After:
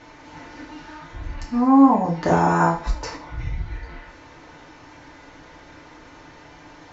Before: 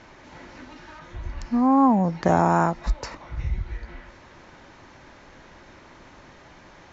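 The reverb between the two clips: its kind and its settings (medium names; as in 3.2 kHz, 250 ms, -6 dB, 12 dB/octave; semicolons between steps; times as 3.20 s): FDN reverb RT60 0.39 s, low-frequency decay 0.75×, high-frequency decay 0.95×, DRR -3 dB; trim -1.5 dB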